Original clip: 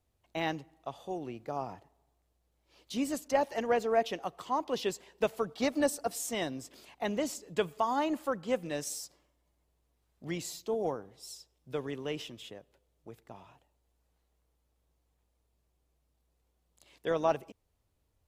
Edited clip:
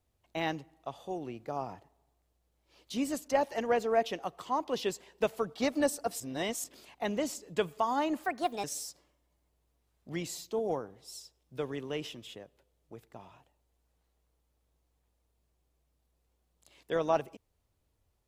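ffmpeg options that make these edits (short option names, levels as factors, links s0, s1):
-filter_complex "[0:a]asplit=5[s0][s1][s2][s3][s4];[s0]atrim=end=6.202[s5];[s1]atrim=start=6.198:end=6.642,asetpts=PTS-STARTPTS,areverse[s6];[s2]atrim=start=6.638:end=8.244[s7];[s3]atrim=start=8.24:end=8.79,asetpts=PTS-STARTPTS,asetrate=60858,aresample=44100,atrim=end_sample=17576,asetpts=PTS-STARTPTS[s8];[s4]atrim=start=8.786[s9];[s5][s6]acrossfade=d=0.004:c1=hsin:c2=hsin[s10];[s10][s7]acrossfade=d=0.004:c1=hsin:c2=hsin[s11];[s11][s8]acrossfade=d=0.004:c1=hsin:c2=hsin[s12];[s12][s9]acrossfade=d=0.004:c1=hsin:c2=hsin"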